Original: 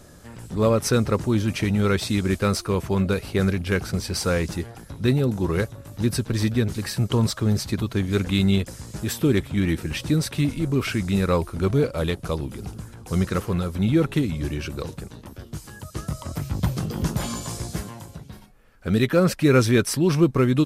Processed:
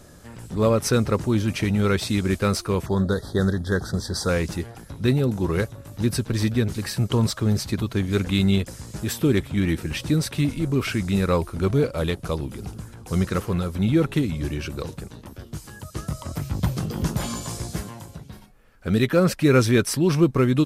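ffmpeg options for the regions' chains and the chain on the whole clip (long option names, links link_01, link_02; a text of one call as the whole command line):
ffmpeg -i in.wav -filter_complex "[0:a]asettb=1/sr,asplit=3[link_01][link_02][link_03];[link_01]atrim=end=2.864[link_04];[link_02]atrim=start=2.86:end=4.29,asetpts=PTS-STARTPTS,afade=type=in:duration=0.004:curve=qsin,afade=type=out:start_time=1.426:duration=0.004:curve=qsin,asuperstop=centerf=2500:order=20:qfactor=1.9,highshelf=frequency=12000:gain=-10[link_05];[link_03]atrim=start=4.286[link_06];[link_04][link_05]acrossfade=duration=0.004:curve1=hsin:curve2=qsin[link_07];[link_07][link_06]acrossfade=duration=0.004:curve1=qsin:curve2=hsin" out.wav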